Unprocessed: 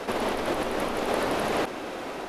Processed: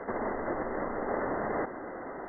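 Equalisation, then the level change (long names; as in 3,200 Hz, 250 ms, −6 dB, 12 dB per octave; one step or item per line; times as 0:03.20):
linear-phase brick-wall low-pass 2,100 Hz
−5.0 dB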